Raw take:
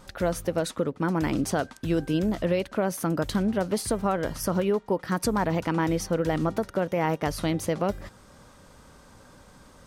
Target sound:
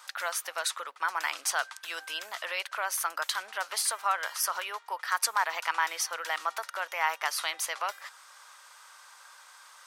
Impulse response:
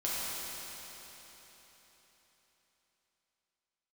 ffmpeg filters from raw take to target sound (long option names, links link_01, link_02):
-af "highpass=frequency=1000:width=0.5412,highpass=frequency=1000:width=1.3066,volume=5dB"